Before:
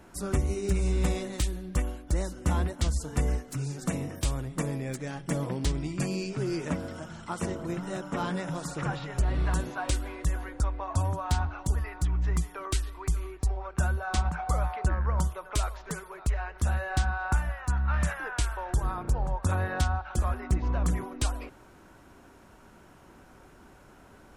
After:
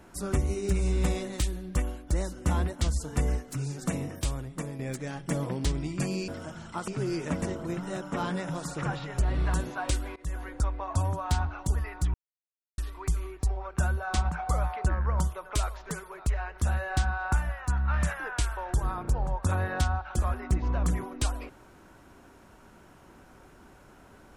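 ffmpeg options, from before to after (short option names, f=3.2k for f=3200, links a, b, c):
-filter_complex "[0:a]asplit=8[a][b][c][d][e][f][g][h];[a]atrim=end=4.79,asetpts=PTS-STARTPTS,afade=t=out:st=4.05:d=0.74:silence=0.446684[i];[b]atrim=start=4.79:end=6.282,asetpts=PTS-STARTPTS,afade=t=in:d=0.004:c=hsin:silence=0.446684[j];[c]atrim=start=6.818:end=7.422[k];[d]atrim=start=6.278:end=6.822[l];[e]atrim=start=7.418:end=10.16,asetpts=PTS-STARTPTS,afade=t=out:st=2.738:d=0.004:c=hsin:silence=0.0794328[m];[f]atrim=start=10.16:end=12.14,asetpts=PTS-STARTPTS,afade=t=in:d=0.42:c=qsin:silence=0.0794328,afade=t=out:st=1.976:d=0.004:c=hsin[n];[g]atrim=start=12.14:end=12.78,asetpts=PTS-STARTPTS,volume=0[o];[h]atrim=start=12.78,asetpts=PTS-STARTPTS,afade=t=in:d=0.004:c=hsin[p];[i][j]concat=n=2:v=0:a=1[q];[q][k]acrossfade=d=0.004:c1=hsin:c2=hsin[r];[r][l]acrossfade=d=0.004:c1=hsin:c2=hsin[s];[m][n][o][p]concat=n=4:v=0:a=1[t];[s][t]acrossfade=d=0.004:c1=hsin:c2=hsin"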